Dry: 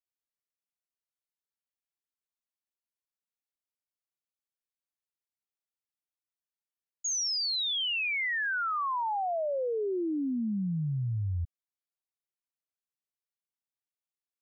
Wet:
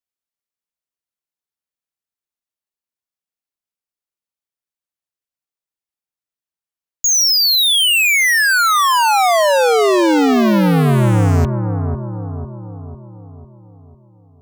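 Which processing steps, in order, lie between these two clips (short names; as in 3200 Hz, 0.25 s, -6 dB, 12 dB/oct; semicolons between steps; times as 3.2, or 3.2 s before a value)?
in parallel at -2.5 dB: fuzz box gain 61 dB, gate -58 dBFS; on the sum: analogue delay 0.499 s, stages 4096, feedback 51%, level -6.5 dB; gain +1.5 dB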